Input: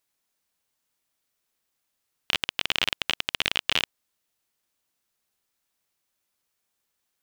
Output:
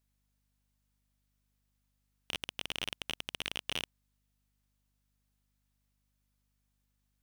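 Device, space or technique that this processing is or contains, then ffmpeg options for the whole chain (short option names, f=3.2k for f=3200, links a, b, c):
valve amplifier with mains hum: -af "aeval=exprs='(tanh(7.94*val(0)+0.6)-tanh(0.6))/7.94':c=same,aeval=exprs='val(0)+0.0002*(sin(2*PI*50*n/s)+sin(2*PI*2*50*n/s)/2+sin(2*PI*3*50*n/s)/3+sin(2*PI*4*50*n/s)/4+sin(2*PI*5*50*n/s)/5)':c=same,volume=-4dB"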